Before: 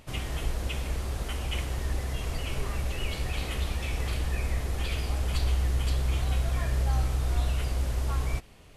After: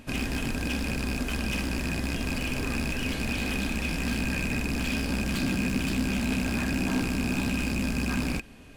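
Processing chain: rattle on loud lows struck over -32 dBFS, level -20 dBFS; wavefolder -28 dBFS; small resonant body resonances 250/1600/2500 Hz, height 13 dB, ringing for 45 ms; trim +1.5 dB

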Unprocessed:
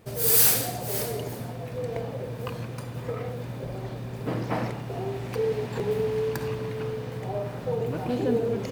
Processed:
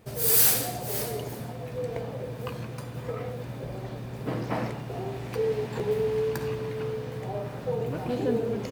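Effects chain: doubling 14 ms -11 dB; trim -1.5 dB

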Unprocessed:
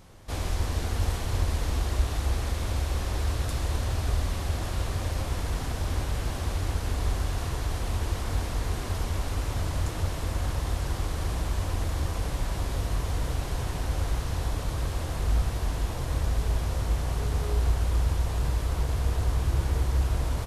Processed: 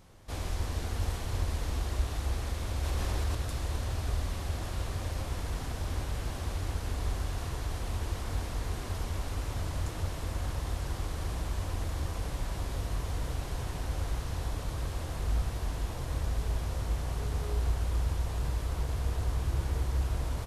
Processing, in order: 2.83–3.35 s: level flattener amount 70%; trim -5 dB

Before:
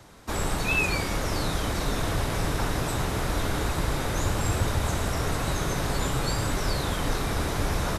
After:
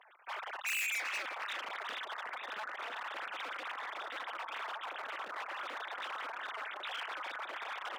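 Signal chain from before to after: formants replaced by sine waves; reverse; upward compressor, threshold -42 dBFS; reverse; on a send: bucket-brigade echo 366 ms, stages 4096, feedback 79%, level -11 dB; on the sum: hard clipper -30 dBFS, distortion 3 dB; high-pass 1 kHz 12 dB/octave; AM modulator 220 Hz, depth 90%

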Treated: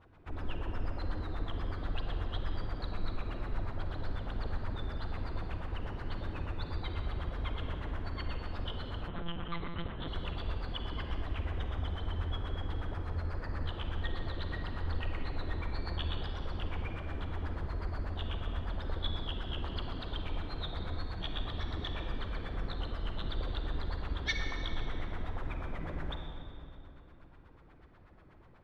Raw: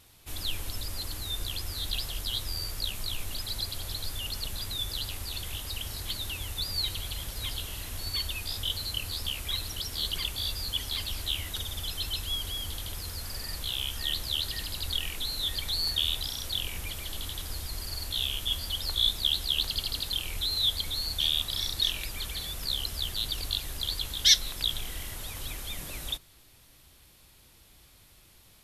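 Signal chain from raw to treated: LFO low-pass sine 8.2 Hz 260–1600 Hz; on a send at -3 dB: reverberation RT60 2.7 s, pre-delay 38 ms; 9.08–10.08 s: on the sum: monotone LPC vocoder at 8 kHz 170 Hz

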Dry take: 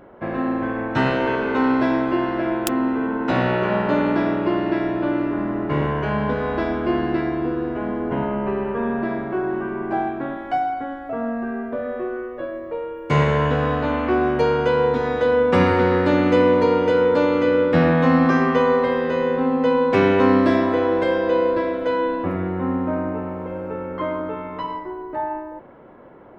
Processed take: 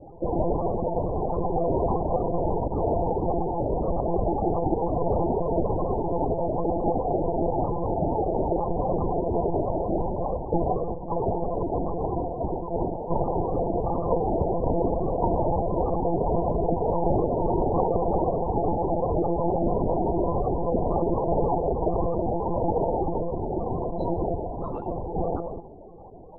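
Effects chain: treble shelf 3.1 kHz +8 dB; compression 12:1, threshold -21 dBFS, peak gain reduction 11 dB; noise-vocoded speech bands 2; loudest bins only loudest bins 16; reverberation RT60 0.80 s, pre-delay 7 ms, DRR 15 dB; monotone LPC vocoder at 8 kHz 170 Hz; trim +3.5 dB

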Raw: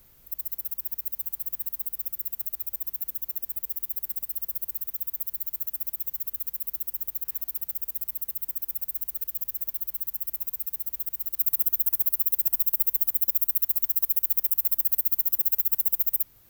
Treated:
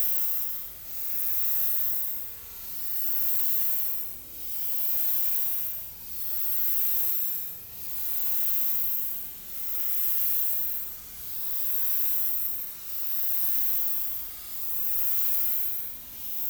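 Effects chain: block-companded coder 5-bit; Paulstretch 25×, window 0.05 s, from 0.93 s; saturation -23 dBFS, distortion -18 dB; three bands compressed up and down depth 70%; trim +5.5 dB

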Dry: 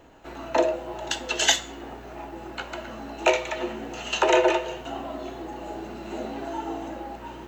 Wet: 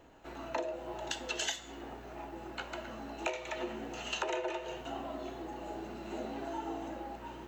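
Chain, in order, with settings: compression 6:1, threshold -26 dBFS, peak gain reduction 11.5 dB; trim -6.5 dB

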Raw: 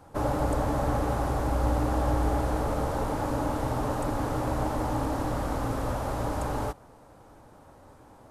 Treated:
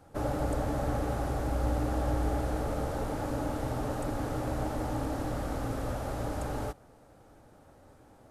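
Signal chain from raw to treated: peaking EQ 1 kHz -8 dB 0.34 oct; trim -3.5 dB

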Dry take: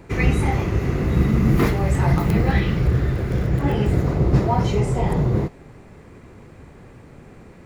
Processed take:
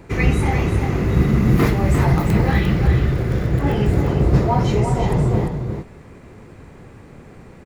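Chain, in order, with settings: delay 350 ms -7 dB; trim +1.5 dB

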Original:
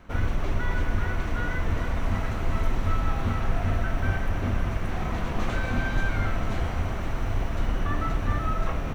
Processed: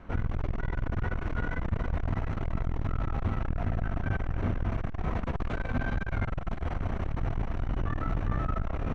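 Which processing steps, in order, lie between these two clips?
treble shelf 2.8 kHz -9.5 dB; in parallel at +3 dB: peak limiter -22 dBFS, peak gain reduction 9.5 dB; on the sum: distance through air 58 m; transformer saturation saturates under 120 Hz; trim -5.5 dB

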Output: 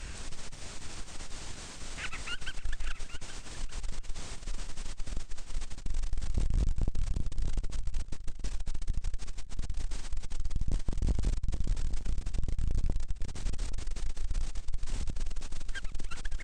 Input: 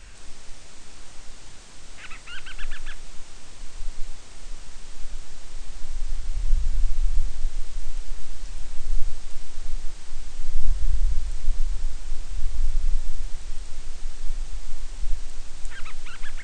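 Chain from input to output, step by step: octave divider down 1 oct, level 0 dB; valve stage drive 26 dB, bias 0.2; on a send: delay 820 ms -12.5 dB; on the sum: modulated delay 567 ms, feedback 35%, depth 65 cents, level -21 dB; trim +3.5 dB

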